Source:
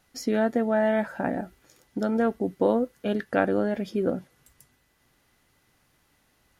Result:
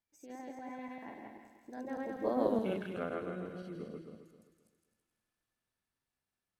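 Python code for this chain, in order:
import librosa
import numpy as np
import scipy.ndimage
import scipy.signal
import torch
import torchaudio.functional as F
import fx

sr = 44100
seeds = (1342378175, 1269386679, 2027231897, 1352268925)

p1 = fx.reverse_delay_fb(x, sr, ms=115, feedback_pct=56, wet_db=0.0)
p2 = fx.doppler_pass(p1, sr, speed_mps=50, closest_m=9.3, pass_at_s=2.54)
p3 = fx.rider(p2, sr, range_db=4, speed_s=2.0)
p4 = p3 + fx.echo_wet_highpass(p3, sr, ms=164, feedback_pct=47, hz=1800.0, wet_db=-5.0, dry=0)
y = p4 * librosa.db_to_amplitude(-8.5)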